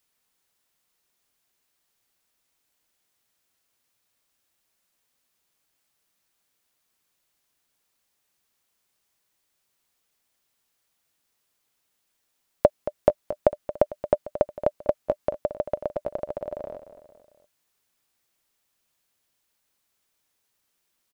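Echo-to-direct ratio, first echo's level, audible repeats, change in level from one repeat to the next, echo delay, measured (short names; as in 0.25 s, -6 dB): -11.5 dB, -13.0 dB, 3, -5.5 dB, 0.225 s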